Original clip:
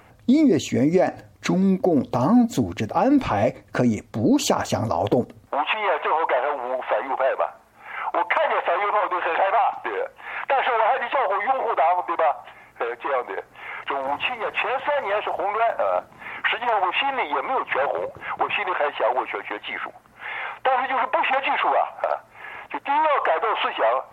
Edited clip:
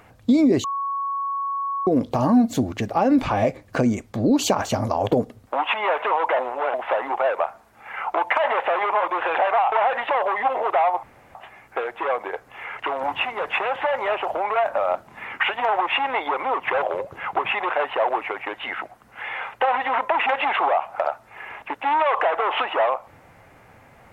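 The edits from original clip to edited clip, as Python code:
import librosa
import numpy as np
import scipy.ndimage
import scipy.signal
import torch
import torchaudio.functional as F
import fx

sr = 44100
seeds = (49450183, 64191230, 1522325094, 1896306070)

y = fx.edit(x, sr, fx.bleep(start_s=0.64, length_s=1.23, hz=1110.0, db=-23.0),
    fx.reverse_span(start_s=6.39, length_s=0.35),
    fx.cut(start_s=9.72, length_s=1.04),
    fx.room_tone_fill(start_s=12.07, length_s=0.32), tone=tone)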